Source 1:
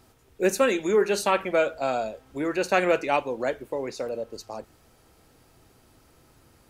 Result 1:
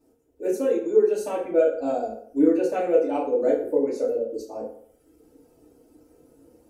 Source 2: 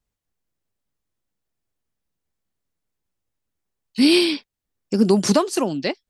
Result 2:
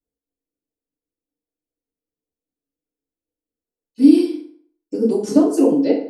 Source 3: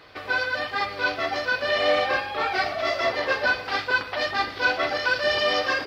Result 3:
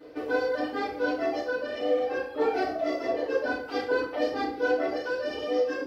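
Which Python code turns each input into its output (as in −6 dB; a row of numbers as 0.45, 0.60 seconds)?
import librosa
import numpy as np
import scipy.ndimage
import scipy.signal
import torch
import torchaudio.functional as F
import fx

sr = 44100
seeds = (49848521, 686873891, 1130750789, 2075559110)

y = fx.dereverb_blind(x, sr, rt60_s=1.2)
y = fx.graphic_eq(y, sr, hz=(125, 250, 500, 1000, 2000, 4000), db=(-8, 9, 10, -7, -7, -8))
y = fx.rider(y, sr, range_db=4, speed_s=0.5)
y = fx.rev_fdn(y, sr, rt60_s=0.6, lf_ratio=0.85, hf_ratio=0.7, size_ms=20.0, drr_db=-9.0)
y = y * librosa.db_to_amplitude(-13.5)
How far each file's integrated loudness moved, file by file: +2.0, +3.0, −5.0 LU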